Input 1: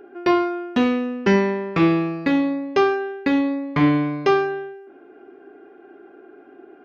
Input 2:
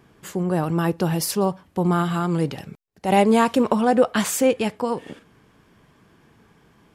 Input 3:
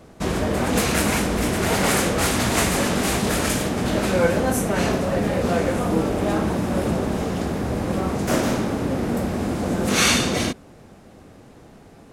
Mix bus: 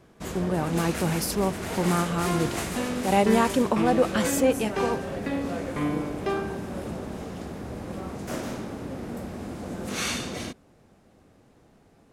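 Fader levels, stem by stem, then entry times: -11.5, -4.5, -11.5 dB; 2.00, 0.00, 0.00 s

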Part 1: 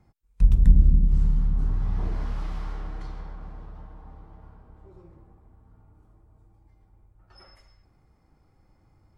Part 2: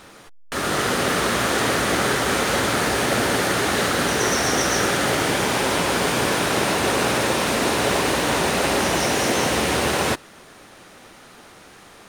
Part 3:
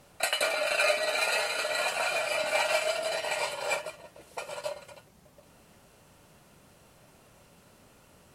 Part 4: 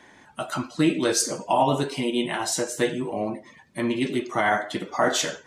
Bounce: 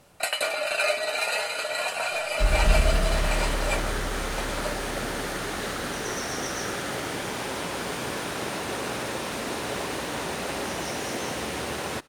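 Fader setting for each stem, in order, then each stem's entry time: -6.0 dB, -10.5 dB, +1.0 dB, off; 2.00 s, 1.85 s, 0.00 s, off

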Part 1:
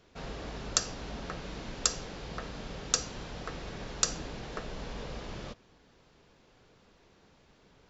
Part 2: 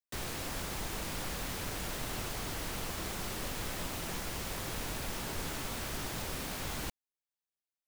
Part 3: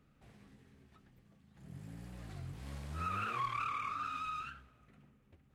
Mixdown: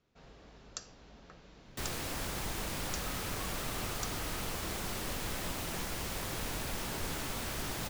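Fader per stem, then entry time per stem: -15.5, +0.5, -13.5 dB; 0.00, 1.65, 0.00 s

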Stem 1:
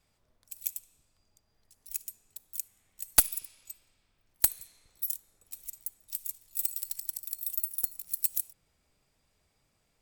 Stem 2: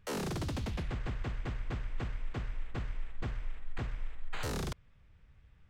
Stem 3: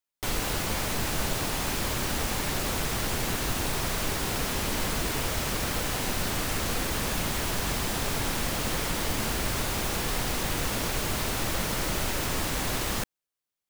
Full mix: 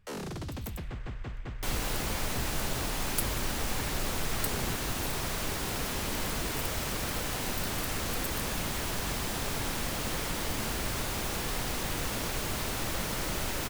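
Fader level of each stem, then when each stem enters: -12.0, -2.0, -4.0 dB; 0.00, 0.00, 1.40 s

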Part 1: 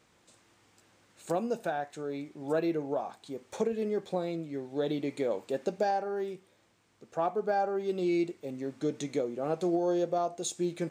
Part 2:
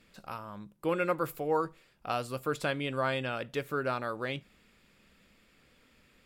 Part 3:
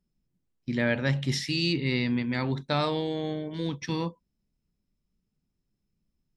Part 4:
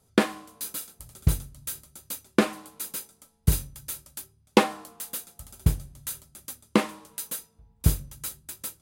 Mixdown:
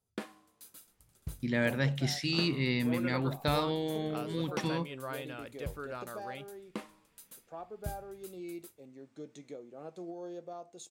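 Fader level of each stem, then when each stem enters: -14.5, -10.0, -3.5, -19.0 dB; 0.35, 2.05, 0.75, 0.00 s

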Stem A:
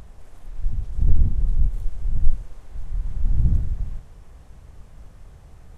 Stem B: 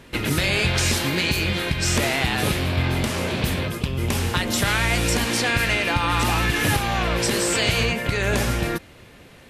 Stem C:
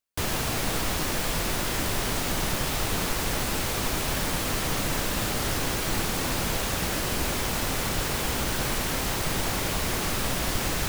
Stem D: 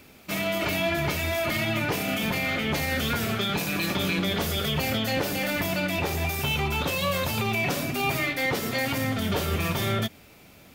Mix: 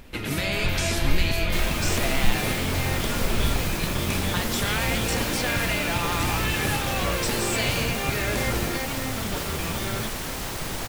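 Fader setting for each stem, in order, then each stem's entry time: -7.5, -6.0, -3.5, -5.5 dB; 0.00, 0.00, 1.35, 0.00 s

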